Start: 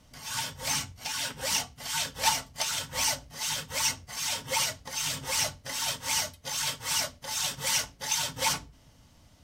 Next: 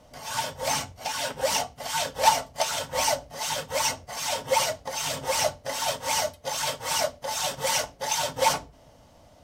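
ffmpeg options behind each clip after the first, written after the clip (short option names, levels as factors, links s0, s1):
-af "equalizer=f=620:t=o:w=1.4:g=14"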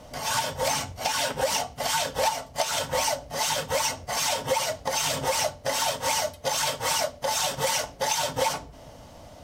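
-af "acompressor=threshold=0.0282:ratio=6,volume=2.51"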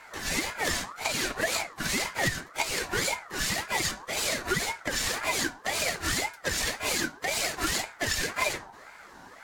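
-af "aeval=exprs='val(0)*sin(2*PI*1200*n/s+1200*0.3/1.9*sin(2*PI*1.9*n/s))':c=same"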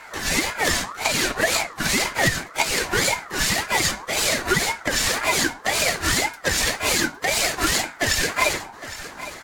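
-af "aecho=1:1:810|1620|2430:0.188|0.0509|0.0137,volume=2.37"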